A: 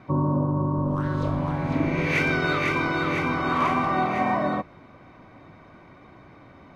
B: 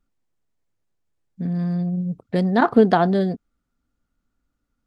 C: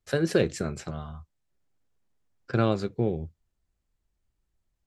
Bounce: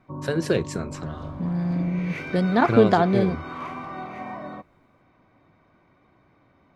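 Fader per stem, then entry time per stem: -11.5, -2.0, +0.5 dB; 0.00, 0.00, 0.15 s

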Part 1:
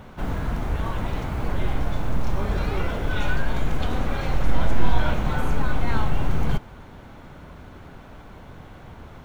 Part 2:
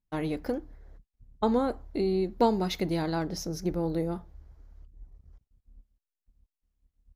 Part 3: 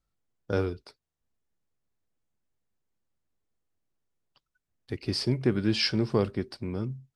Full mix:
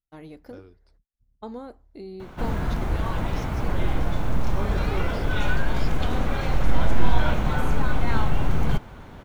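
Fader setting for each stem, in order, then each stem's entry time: +0.5, -11.5, -19.5 dB; 2.20, 0.00, 0.00 s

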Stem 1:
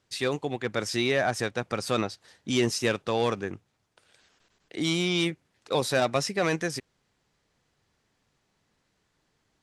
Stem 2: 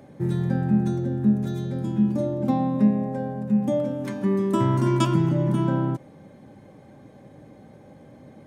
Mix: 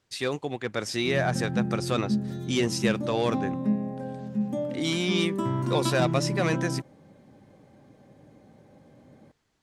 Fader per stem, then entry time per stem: -1.0, -6.5 dB; 0.00, 0.85 s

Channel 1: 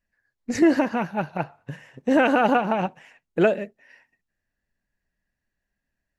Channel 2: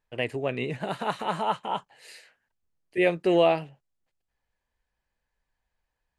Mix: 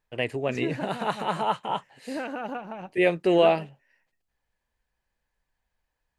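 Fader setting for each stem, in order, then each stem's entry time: -14.5, +1.0 dB; 0.00, 0.00 s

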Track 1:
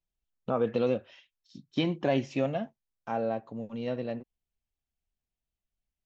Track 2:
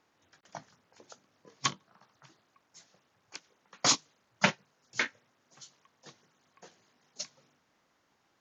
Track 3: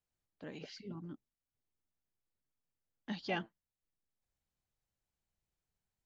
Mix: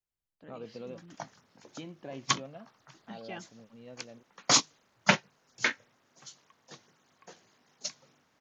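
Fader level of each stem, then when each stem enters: -16.0, +2.5, -6.0 dB; 0.00, 0.65, 0.00 s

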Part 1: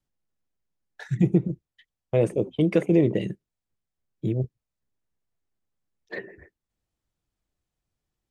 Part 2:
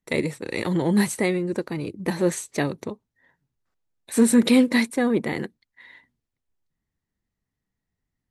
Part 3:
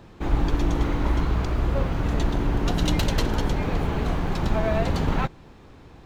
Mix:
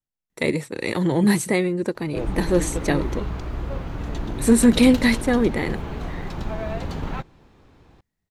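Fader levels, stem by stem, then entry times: -10.0, +2.0, -5.5 dB; 0.00, 0.30, 1.95 s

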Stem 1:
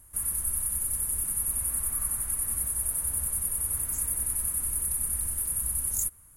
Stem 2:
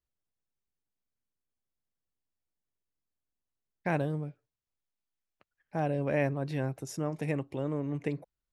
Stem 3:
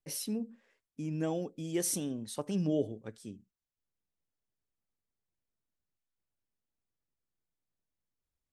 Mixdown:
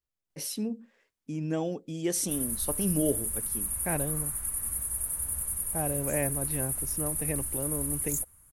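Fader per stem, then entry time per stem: -3.0, -2.0, +3.0 dB; 2.15, 0.00, 0.30 s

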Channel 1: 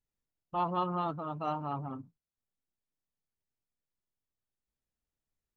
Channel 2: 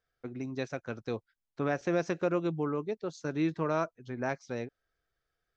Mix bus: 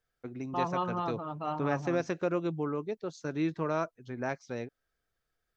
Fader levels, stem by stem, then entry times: -0.5, -1.0 dB; 0.00, 0.00 s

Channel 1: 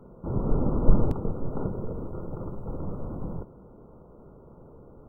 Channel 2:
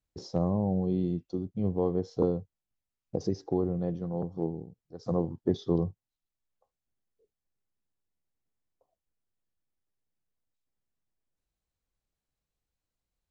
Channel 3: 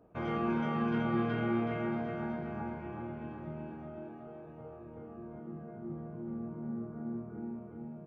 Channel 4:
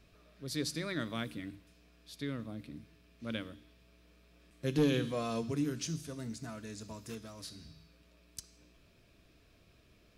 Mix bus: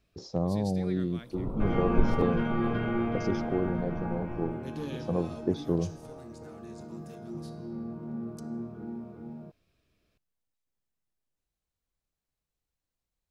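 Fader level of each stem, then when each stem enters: -7.0, -1.0, +2.0, -9.5 dB; 1.10, 0.00, 1.45, 0.00 s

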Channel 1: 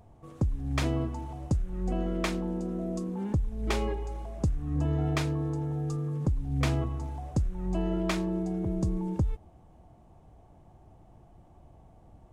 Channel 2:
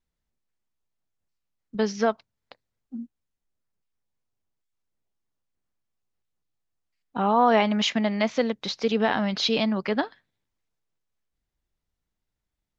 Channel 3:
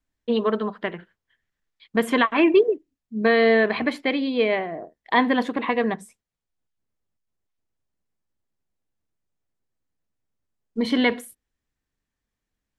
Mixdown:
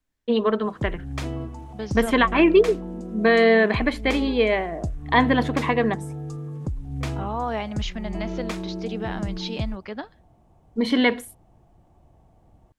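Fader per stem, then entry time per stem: -1.5, -8.5, +1.0 dB; 0.40, 0.00, 0.00 s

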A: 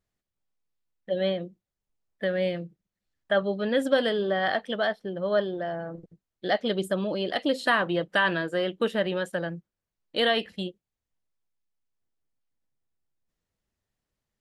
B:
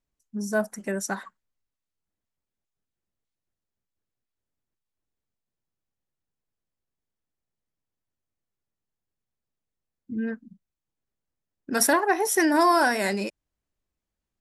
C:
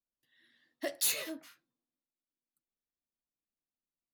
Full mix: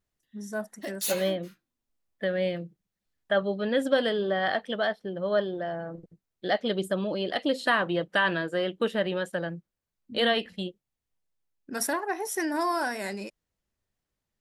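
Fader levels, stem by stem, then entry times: -1.0, -8.0, -1.0 dB; 0.00, 0.00, 0.00 s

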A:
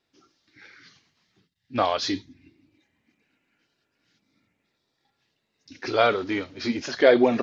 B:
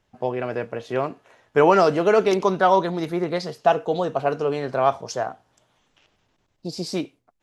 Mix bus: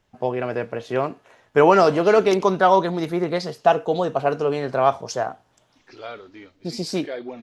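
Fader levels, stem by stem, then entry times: -15.5, +1.5 dB; 0.05, 0.00 s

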